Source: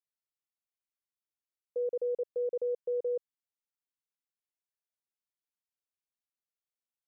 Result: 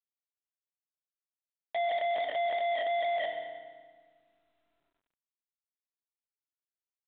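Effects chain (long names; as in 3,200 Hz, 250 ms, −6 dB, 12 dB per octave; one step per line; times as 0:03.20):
phase-vocoder pitch shift without resampling +6 semitones
echo with shifted repeats 84 ms, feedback 35%, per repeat −44 Hz, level −13 dB
in parallel at +2 dB: downward compressor 6 to 1, threshold −41 dBFS, peak gain reduction 11 dB
on the sum: log-companded quantiser 2 bits
feedback delay network reverb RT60 1.5 s, low-frequency decay 1.55×, high-frequency decay 0.8×, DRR 6 dB
soft clipping −28 dBFS, distortion −12 dB
high-pass filter 240 Hz 6 dB per octave
brickwall limiter −29 dBFS, peak gain reduction 3.5 dB
level +3.5 dB
mu-law 64 kbit/s 8,000 Hz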